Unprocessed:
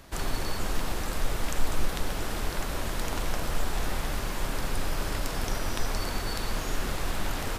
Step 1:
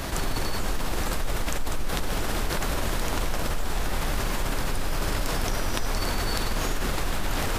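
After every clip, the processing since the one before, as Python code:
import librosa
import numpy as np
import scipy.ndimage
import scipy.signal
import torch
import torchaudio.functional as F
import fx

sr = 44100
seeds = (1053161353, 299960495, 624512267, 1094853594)

y = fx.env_flatten(x, sr, amount_pct=70)
y = y * librosa.db_to_amplitude(-6.0)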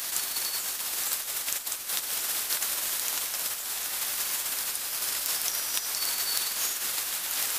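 y = np.diff(x, prepend=0.0)
y = np.clip(10.0 ** (20.0 / 20.0) * y, -1.0, 1.0) / 10.0 ** (20.0 / 20.0)
y = y * librosa.db_to_amplitude(7.5)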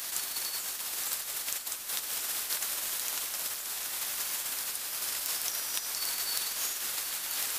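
y = x + 10.0 ** (-12.0 / 20.0) * np.pad(x, (int(1031 * sr / 1000.0), 0))[:len(x)]
y = y * librosa.db_to_amplitude(-4.0)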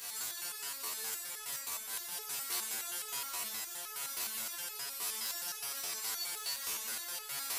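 y = fx.rev_fdn(x, sr, rt60_s=2.0, lf_ratio=1.05, hf_ratio=0.6, size_ms=41.0, drr_db=-4.0)
y = fx.resonator_held(y, sr, hz=9.6, low_hz=89.0, high_hz=430.0)
y = y * librosa.db_to_amplitude(2.0)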